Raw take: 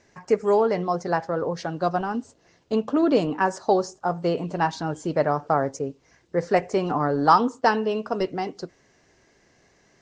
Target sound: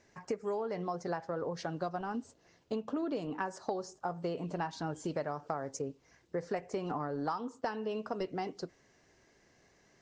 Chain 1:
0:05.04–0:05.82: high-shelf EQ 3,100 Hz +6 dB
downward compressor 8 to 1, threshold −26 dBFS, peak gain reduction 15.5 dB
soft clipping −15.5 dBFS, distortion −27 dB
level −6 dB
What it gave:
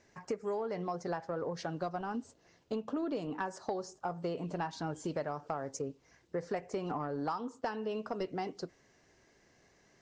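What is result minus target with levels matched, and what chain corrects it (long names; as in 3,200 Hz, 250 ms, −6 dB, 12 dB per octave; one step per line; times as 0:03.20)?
soft clipping: distortion +21 dB
0:05.04–0:05.82: high-shelf EQ 3,100 Hz +6 dB
downward compressor 8 to 1, threshold −26 dBFS, peak gain reduction 15.5 dB
soft clipping −4 dBFS, distortion −47 dB
level −6 dB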